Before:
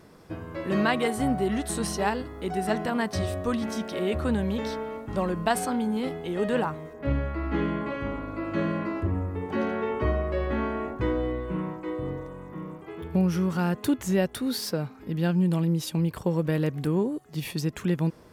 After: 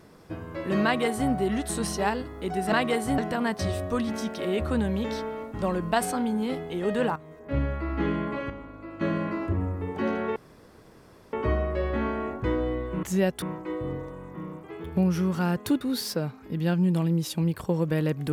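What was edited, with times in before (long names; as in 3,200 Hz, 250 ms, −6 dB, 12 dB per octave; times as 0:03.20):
0:00.84–0:01.30: duplicate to 0:02.72
0:06.70–0:07.14: fade in, from −12.5 dB
0:08.04–0:08.55: clip gain −8.5 dB
0:09.90: splice in room tone 0.97 s
0:13.99–0:14.38: move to 0:11.60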